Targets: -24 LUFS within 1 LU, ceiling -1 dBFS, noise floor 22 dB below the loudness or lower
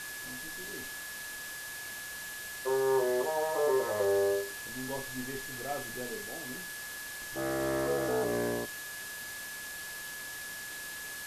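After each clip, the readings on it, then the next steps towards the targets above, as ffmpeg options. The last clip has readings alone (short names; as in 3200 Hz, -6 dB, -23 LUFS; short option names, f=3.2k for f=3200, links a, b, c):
steady tone 1700 Hz; tone level -42 dBFS; noise floor -42 dBFS; noise floor target -56 dBFS; loudness -34.0 LUFS; peak -18.0 dBFS; loudness target -24.0 LUFS
-> -af "bandreject=f=1.7k:w=30"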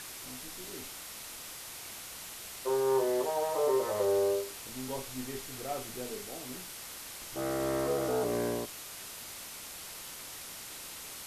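steady tone none; noise floor -45 dBFS; noise floor target -57 dBFS
-> -af "afftdn=nr=12:nf=-45"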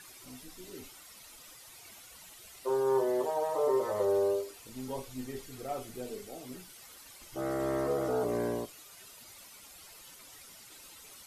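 noise floor -53 dBFS; noise floor target -55 dBFS
-> -af "afftdn=nr=6:nf=-53"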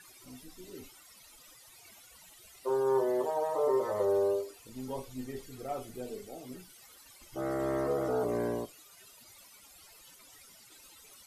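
noise floor -57 dBFS; loudness -33.0 LUFS; peak -18.5 dBFS; loudness target -24.0 LUFS
-> -af "volume=9dB"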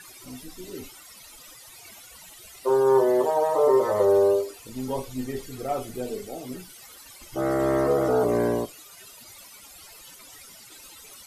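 loudness -24.0 LUFS; peak -9.5 dBFS; noise floor -48 dBFS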